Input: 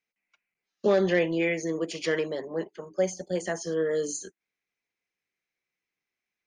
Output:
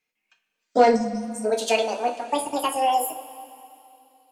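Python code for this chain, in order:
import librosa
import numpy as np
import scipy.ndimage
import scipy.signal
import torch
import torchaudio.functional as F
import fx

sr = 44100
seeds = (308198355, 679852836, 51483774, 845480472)

y = fx.speed_glide(x, sr, from_pct=103, to_pct=197)
y = fx.spec_erase(y, sr, start_s=0.95, length_s=0.5, low_hz=300.0, high_hz=5000.0)
y = fx.rev_double_slope(y, sr, seeds[0], early_s=0.24, late_s=2.8, knee_db=-18, drr_db=2.0)
y = y * 10.0 ** (4.5 / 20.0)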